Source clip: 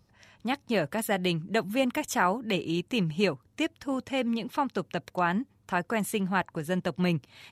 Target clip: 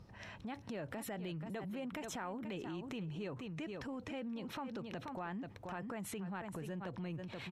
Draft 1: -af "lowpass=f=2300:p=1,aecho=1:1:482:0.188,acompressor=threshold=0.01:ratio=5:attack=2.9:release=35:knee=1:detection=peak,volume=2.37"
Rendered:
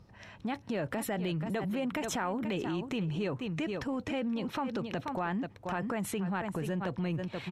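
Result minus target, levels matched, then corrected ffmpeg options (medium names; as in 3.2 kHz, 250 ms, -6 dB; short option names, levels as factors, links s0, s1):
compression: peak gain reduction -9.5 dB
-af "lowpass=f=2300:p=1,aecho=1:1:482:0.188,acompressor=threshold=0.00251:ratio=5:attack=2.9:release=35:knee=1:detection=peak,volume=2.37"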